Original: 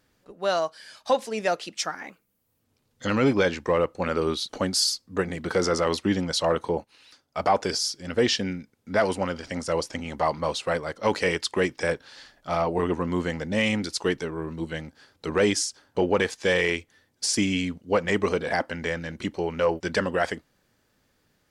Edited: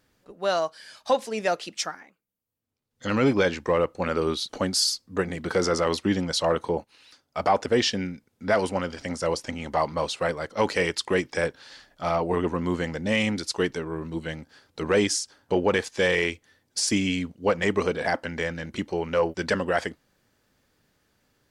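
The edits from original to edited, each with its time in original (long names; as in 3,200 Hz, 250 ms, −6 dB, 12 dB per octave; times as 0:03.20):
0:01.82–0:03.14: duck −14.5 dB, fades 0.24 s
0:07.66–0:08.12: remove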